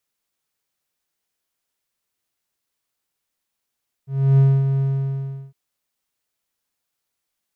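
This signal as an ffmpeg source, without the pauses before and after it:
-f lavfi -i "aevalsrc='0.422*(1-4*abs(mod(136*t+0.25,1)-0.5))':d=1.459:s=44100,afade=t=in:d=0.311,afade=t=out:st=0.311:d=0.251:silence=0.447,afade=t=out:st=0.73:d=0.729"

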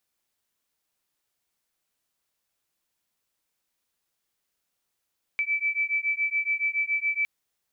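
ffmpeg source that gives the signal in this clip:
-f lavfi -i "aevalsrc='0.0447*(sin(2*PI*2310*t)+sin(2*PI*2317.1*t))':d=1.86:s=44100"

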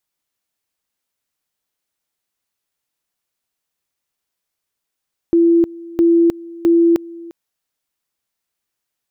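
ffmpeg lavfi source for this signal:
-f lavfi -i "aevalsrc='pow(10,(-8.5-21.5*gte(mod(t,0.66),0.31))/20)*sin(2*PI*337*t)':d=1.98:s=44100"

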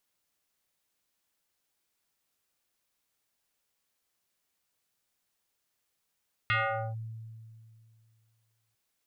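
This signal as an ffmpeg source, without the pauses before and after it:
-f lavfi -i "aevalsrc='0.0708*pow(10,-3*t/2.4)*sin(2*PI*112*t+4*clip(1-t/0.45,0,1)*sin(2*PI*5.97*112*t))':d=2.25:s=44100"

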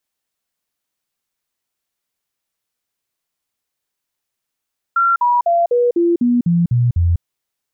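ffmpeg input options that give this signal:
-f lavfi -i "aevalsrc='0.282*clip(min(mod(t,0.25),0.2-mod(t,0.25))/0.005,0,1)*sin(2*PI*1370*pow(2,-floor(t/0.25)/2)*mod(t,0.25))':d=2.25:s=44100"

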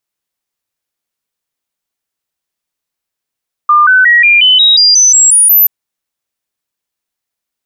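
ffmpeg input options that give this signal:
-f lavfi -i "aevalsrc='0.708*clip(min(mod(t,0.18),0.18-mod(t,0.18))/0.005,0,1)*sin(2*PI*1200*pow(2,floor(t/0.18)/3)*mod(t,0.18))':d=1.98:s=44100"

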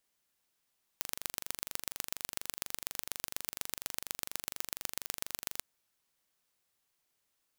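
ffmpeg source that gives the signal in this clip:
-f lavfi -i "aevalsrc='0.501*eq(mod(n,1822),0)*(0.5+0.5*eq(mod(n,5466),0))':d=4.61:s=44100"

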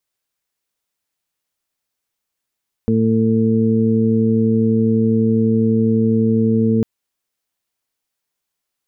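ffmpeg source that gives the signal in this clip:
-f lavfi -i "aevalsrc='0.106*sin(2*PI*112*t)+0.2*sin(2*PI*224*t)+0.0473*sin(2*PI*336*t)+0.1*sin(2*PI*448*t)':d=3.95:s=44100"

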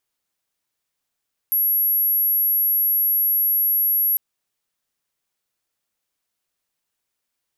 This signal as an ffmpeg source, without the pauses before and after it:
-f lavfi -i "sine=f=11600:d=2.65:r=44100,volume=2.06dB"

